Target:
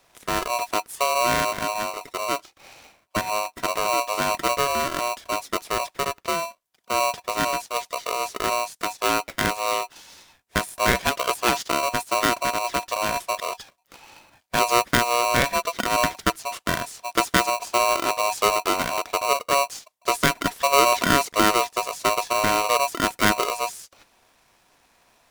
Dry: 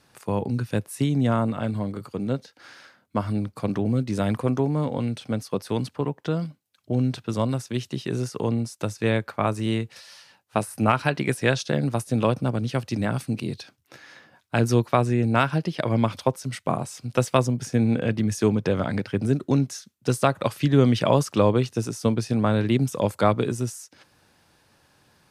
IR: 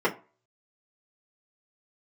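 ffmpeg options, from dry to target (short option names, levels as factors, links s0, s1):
-af "asuperstop=centerf=3400:order=4:qfactor=5.7,aeval=exprs='val(0)*sgn(sin(2*PI*840*n/s))':c=same"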